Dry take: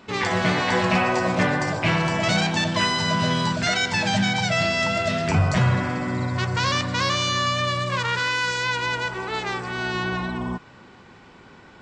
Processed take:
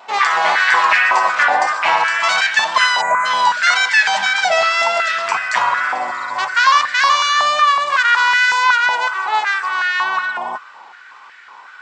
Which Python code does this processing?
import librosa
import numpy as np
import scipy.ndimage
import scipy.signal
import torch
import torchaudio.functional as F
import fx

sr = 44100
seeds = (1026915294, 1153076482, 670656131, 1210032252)

y = fx.vibrato(x, sr, rate_hz=1.9, depth_cents=31.0)
y = fx.spec_box(y, sr, start_s=3.01, length_s=0.25, low_hz=2500.0, high_hz=6100.0, gain_db=-30)
y = fx.filter_held_highpass(y, sr, hz=5.4, low_hz=780.0, high_hz=1700.0)
y = y * 10.0 ** (4.5 / 20.0)